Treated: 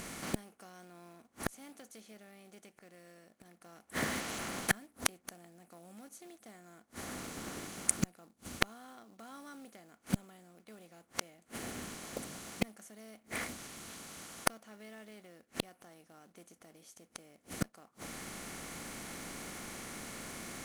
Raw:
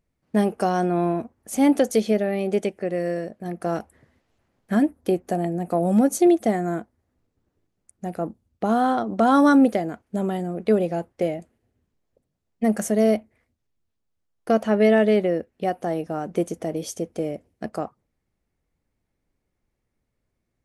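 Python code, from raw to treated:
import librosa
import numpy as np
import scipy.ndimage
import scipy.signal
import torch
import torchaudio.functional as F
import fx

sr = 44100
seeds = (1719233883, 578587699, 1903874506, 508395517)

p1 = fx.bin_compress(x, sr, power=0.6)
p2 = fx.gate_flip(p1, sr, shuts_db=-21.0, range_db=-41)
p3 = fx.quant_float(p2, sr, bits=2)
p4 = p2 + F.gain(torch.from_numpy(p3), -4.0).numpy()
p5 = fx.tone_stack(p4, sr, knobs='5-5-5')
y = F.gain(torch.from_numpy(p5), 17.5).numpy()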